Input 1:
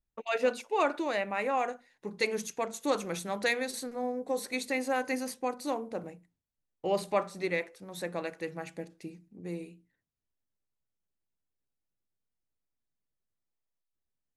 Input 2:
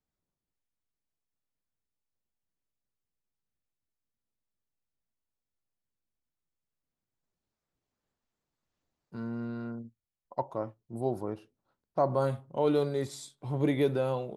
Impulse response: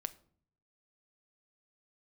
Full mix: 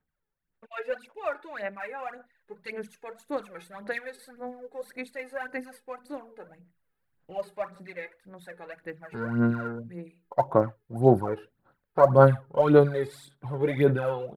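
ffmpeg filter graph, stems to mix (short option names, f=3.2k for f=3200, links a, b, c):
-filter_complex "[0:a]adelay=450,volume=-13dB[a];[1:a]equalizer=f=6k:w=0.99:g=-4,bandreject=f=630:w=12,dynaudnorm=f=210:g=21:m=6dB,volume=-2dB[b];[a][b]amix=inputs=2:normalize=0,equalizer=f=160:t=o:w=0.67:g=4,equalizer=f=630:t=o:w=0.67:g=4,equalizer=f=1.6k:t=o:w=0.67:g=11,equalizer=f=6.3k:t=o:w=0.67:g=-12,aphaser=in_gain=1:out_gain=1:delay=2.4:decay=0.66:speed=1.8:type=sinusoidal"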